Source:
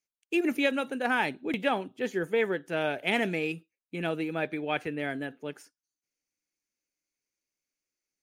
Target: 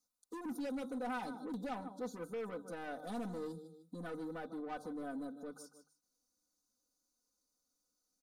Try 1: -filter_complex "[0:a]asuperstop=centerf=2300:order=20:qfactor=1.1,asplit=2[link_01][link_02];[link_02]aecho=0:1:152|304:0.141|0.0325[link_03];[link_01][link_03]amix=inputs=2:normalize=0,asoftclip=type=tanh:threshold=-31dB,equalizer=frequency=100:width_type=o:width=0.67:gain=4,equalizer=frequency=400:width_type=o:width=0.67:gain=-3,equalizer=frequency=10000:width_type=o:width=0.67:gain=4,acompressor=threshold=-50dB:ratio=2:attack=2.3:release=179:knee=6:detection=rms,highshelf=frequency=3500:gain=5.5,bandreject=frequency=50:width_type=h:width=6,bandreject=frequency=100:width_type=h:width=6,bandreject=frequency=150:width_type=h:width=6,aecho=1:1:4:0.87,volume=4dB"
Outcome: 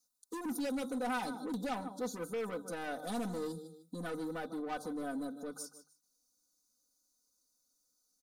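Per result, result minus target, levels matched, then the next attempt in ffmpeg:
8,000 Hz band +7.0 dB; downward compressor: peak gain reduction −4 dB
-filter_complex "[0:a]asuperstop=centerf=2300:order=20:qfactor=1.1,asplit=2[link_01][link_02];[link_02]aecho=0:1:152|304:0.141|0.0325[link_03];[link_01][link_03]amix=inputs=2:normalize=0,asoftclip=type=tanh:threshold=-31dB,equalizer=frequency=100:width_type=o:width=0.67:gain=4,equalizer=frequency=400:width_type=o:width=0.67:gain=-3,equalizer=frequency=10000:width_type=o:width=0.67:gain=4,acompressor=threshold=-50dB:ratio=2:attack=2.3:release=179:knee=6:detection=rms,highshelf=frequency=3500:gain=-3,bandreject=frequency=50:width_type=h:width=6,bandreject=frequency=100:width_type=h:width=6,bandreject=frequency=150:width_type=h:width=6,aecho=1:1:4:0.87,volume=4dB"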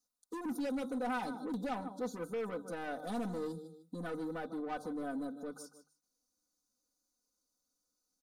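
downward compressor: peak gain reduction −4 dB
-filter_complex "[0:a]asuperstop=centerf=2300:order=20:qfactor=1.1,asplit=2[link_01][link_02];[link_02]aecho=0:1:152|304:0.141|0.0325[link_03];[link_01][link_03]amix=inputs=2:normalize=0,asoftclip=type=tanh:threshold=-31dB,equalizer=frequency=100:width_type=o:width=0.67:gain=4,equalizer=frequency=400:width_type=o:width=0.67:gain=-3,equalizer=frequency=10000:width_type=o:width=0.67:gain=4,acompressor=threshold=-57.5dB:ratio=2:attack=2.3:release=179:knee=6:detection=rms,highshelf=frequency=3500:gain=-3,bandreject=frequency=50:width_type=h:width=6,bandreject=frequency=100:width_type=h:width=6,bandreject=frequency=150:width_type=h:width=6,aecho=1:1:4:0.87,volume=4dB"

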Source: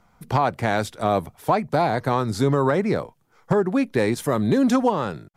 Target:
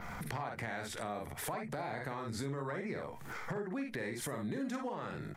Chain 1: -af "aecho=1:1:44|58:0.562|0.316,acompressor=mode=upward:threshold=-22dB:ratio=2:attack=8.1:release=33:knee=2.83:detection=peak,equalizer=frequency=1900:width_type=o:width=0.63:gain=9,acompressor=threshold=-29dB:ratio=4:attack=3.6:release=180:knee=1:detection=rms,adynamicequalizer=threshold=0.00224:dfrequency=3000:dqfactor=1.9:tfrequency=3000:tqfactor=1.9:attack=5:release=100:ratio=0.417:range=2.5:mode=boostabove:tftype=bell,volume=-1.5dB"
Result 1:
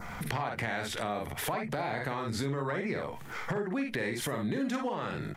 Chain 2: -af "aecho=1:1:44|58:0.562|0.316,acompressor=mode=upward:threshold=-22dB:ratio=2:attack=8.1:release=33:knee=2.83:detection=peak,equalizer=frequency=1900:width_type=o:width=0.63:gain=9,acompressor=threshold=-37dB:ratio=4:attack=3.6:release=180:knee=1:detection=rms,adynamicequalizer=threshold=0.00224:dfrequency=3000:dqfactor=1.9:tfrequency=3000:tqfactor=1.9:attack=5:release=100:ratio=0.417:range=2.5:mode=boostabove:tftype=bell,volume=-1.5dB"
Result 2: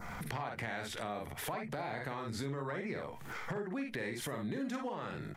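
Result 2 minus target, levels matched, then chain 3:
8,000 Hz band −2.0 dB
-af "aecho=1:1:44|58:0.562|0.316,acompressor=mode=upward:threshold=-22dB:ratio=2:attack=8.1:release=33:knee=2.83:detection=peak,equalizer=frequency=1900:width_type=o:width=0.63:gain=9,acompressor=threshold=-37dB:ratio=4:attack=3.6:release=180:knee=1:detection=rms,adynamicequalizer=threshold=0.00224:dfrequency=8500:dqfactor=1.9:tfrequency=8500:tqfactor=1.9:attack=5:release=100:ratio=0.417:range=2.5:mode=boostabove:tftype=bell,volume=-1.5dB"

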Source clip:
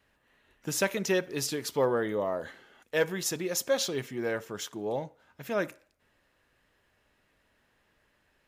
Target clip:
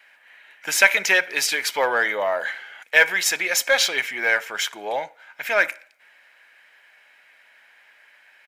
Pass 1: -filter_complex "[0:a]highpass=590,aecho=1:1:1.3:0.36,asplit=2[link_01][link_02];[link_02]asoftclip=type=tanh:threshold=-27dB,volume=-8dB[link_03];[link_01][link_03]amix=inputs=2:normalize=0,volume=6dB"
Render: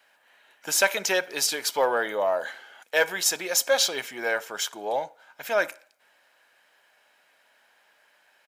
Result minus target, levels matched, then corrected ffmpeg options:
2,000 Hz band −4.5 dB
-filter_complex "[0:a]highpass=590,equalizer=frequency=2100:width_type=o:width=0.99:gain=14,aecho=1:1:1.3:0.36,asplit=2[link_01][link_02];[link_02]asoftclip=type=tanh:threshold=-27dB,volume=-8dB[link_03];[link_01][link_03]amix=inputs=2:normalize=0,volume=6dB"

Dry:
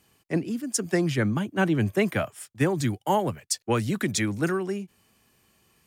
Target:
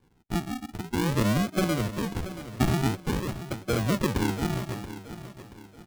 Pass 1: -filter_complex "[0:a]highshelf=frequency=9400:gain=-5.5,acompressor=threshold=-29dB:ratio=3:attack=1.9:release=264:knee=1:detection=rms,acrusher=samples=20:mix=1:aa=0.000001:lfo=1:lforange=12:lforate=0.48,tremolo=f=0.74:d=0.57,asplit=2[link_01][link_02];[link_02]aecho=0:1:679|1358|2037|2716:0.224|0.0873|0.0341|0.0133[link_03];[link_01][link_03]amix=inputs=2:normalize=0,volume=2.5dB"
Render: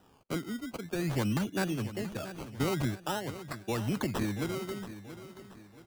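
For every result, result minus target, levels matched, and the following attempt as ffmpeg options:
sample-and-hold swept by an LFO: distortion −13 dB; downward compressor: peak gain reduction +6.5 dB
-filter_complex "[0:a]highshelf=frequency=9400:gain=-5.5,acompressor=threshold=-29dB:ratio=3:attack=1.9:release=264:knee=1:detection=rms,acrusher=samples=67:mix=1:aa=0.000001:lfo=1:lforange=40.2:lforate=0.48,tremolo=f=0.74:d=0.57,asplit=2[link_01][link_02];[link_02]aecho=0:1:679|1358|2037|2716:0.224|0.0873|0.0341|0.0133[link_03];[link_01][link_03]amix=inputs=2:normalize=0,volume=2.5dB"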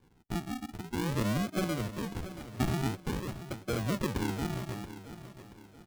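downward compressor: peak gain reduction +6.5 dB
-filter_complex "[0:a]highshelf=frequency=9400:gain=-5.5,acompressor=threshold=-19.5dB:ratio=3:attack=1.9:release=264:knee=1:detection=rms,acrusher=samples=67:mix=1:aa=0.000001:lfo=1:lforange=40.2:lforate=0.48,tremolo=f=0.74:d=0.57,asplit=2[link_01][link_02];[link_02]aecho=0:1:679|1358|2037|2716:0.224|0.0873|0.0341|0.0133[link_03];[link_01][link_03]amix=inputs=2:normalize=0,volume=2.5dB"

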